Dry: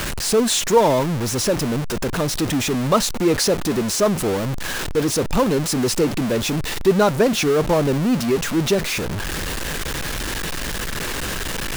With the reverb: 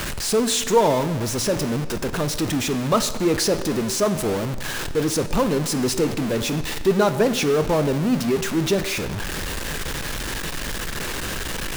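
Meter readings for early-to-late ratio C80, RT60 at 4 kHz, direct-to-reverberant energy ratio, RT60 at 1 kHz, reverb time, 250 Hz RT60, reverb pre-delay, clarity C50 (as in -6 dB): 14.5 dB, 1.1 s, 11.0 dB, 1.3 s, 1.3 s, 1.3 s, 16 ms, 13.0 dB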